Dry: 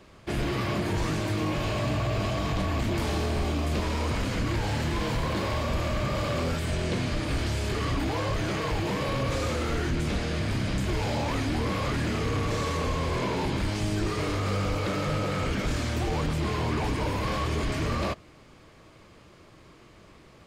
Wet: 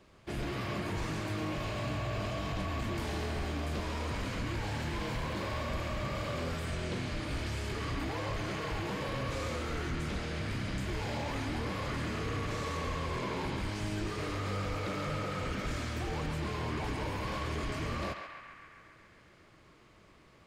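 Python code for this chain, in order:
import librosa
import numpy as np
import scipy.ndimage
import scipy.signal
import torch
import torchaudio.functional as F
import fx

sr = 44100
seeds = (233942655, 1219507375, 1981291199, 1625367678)

p1 = x + fx.echo_banded(x, sr, ms=136, feedback_pct=78, hz=1700.0, wet_db=-4, dry=0)
y = p1 * librosa.db_to_amplitude(-8.0)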